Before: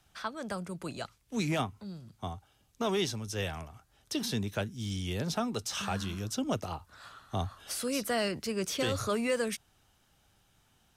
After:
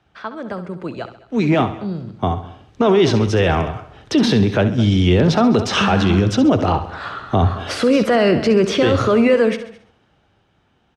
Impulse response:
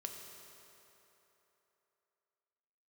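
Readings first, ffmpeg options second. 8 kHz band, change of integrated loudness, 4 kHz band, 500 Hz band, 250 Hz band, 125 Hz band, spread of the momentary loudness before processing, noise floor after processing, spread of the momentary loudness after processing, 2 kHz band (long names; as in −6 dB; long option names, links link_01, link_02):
+4.0 dB, +17.5 dB, +12.0 dB, +18.0 dB, +19.0 dB, +18.5 dB, 12 LU, −61 dBFS, 14 LU, +14.5 dB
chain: -filter_complex "[0:a]highpass=50,dynaudnorm=framelen=200:gausssize=21:maxgain=15.5dB,lowpass=2800,equalizer=frequency=380:width=0.99:gain=5.5,asplit=2[link_01][link_02];[link_02]aecho=0:1:216:0.075[link_03];[link_01][link_03]amix=inputs=2:normalize=0,alimiter=limit=-13.5dB:level=0:latency=1:release=24,asplit=2[link_04][link_05];[link_05]aecho=0:1:67|134|201|268|335:0.251|0.118|0.0555|0.0261|0.0123[link_06];[link_04][link_06]amix=inputs=2:normalize=0,volume=6.5dB"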